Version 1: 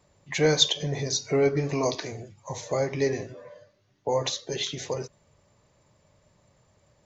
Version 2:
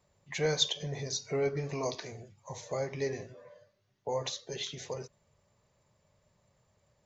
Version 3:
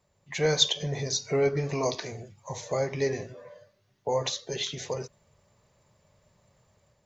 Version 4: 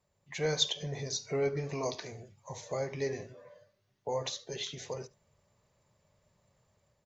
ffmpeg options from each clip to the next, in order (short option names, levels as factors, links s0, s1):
-af "equalizer=f=300:w=5.8:g=-8,volume=0.422"
-af "dynaudnorm=f=150:g=5:m=2"
-af "aecho=1:1:72:0.0794,volume=0.473"